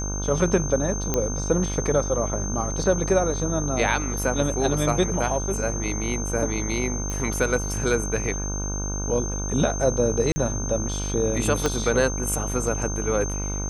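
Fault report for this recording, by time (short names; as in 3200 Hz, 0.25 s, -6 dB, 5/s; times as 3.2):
buzz 50 Hz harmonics 31 -29 dBFS
tone 6300 Hz -31 dBFS
1.14 pop -8 dBFS
7.1 pop -17 dBFS
10.32–10.36 gap 40 ms
11.66 pop -8 dBFS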